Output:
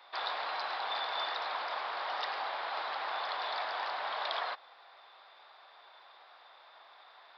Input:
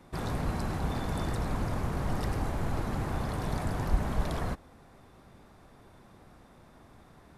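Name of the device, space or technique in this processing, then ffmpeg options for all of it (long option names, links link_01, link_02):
musical greeting card: -af "aresample=11025,aresample=44100,highpass=frequency=710:width=0.5412,highpass=frequency=710:width=1.3066,equalizer=frequency=3600:width_type=o:width=0.44:gain=7.5,volume=4.5dB"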